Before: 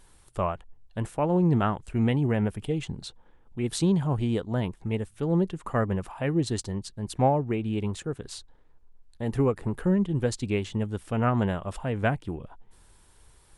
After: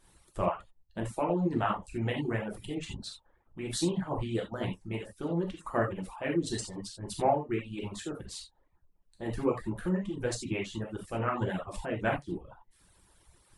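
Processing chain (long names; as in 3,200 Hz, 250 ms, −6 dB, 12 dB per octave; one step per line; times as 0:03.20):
reverb whose tail is shaped and stops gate 110 ms flat, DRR −3 dB
reverb reduction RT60 0.66 s
harmonic and percussive parts rebalanced harmonic −12 dB
level −2.5 dB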